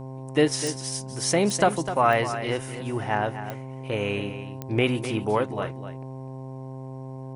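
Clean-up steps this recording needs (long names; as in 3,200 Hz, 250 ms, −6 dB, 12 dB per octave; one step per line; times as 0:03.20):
click removal
hum removal 131.8 Hz, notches 8
echo removal 253 ms −11 dB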